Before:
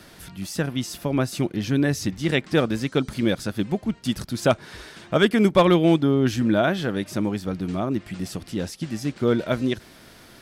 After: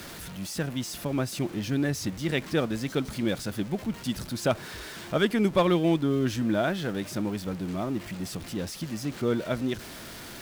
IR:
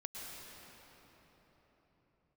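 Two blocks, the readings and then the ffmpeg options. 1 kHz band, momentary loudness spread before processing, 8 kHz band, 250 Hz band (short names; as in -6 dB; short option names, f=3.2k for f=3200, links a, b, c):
-5.5 dB, 13 LU, -2.0 dB, -5.5 dB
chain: -af "aeval=exprs='val(0)+0.5*0.0266*sgn(val(0))':c=same,volume=-6.5dB"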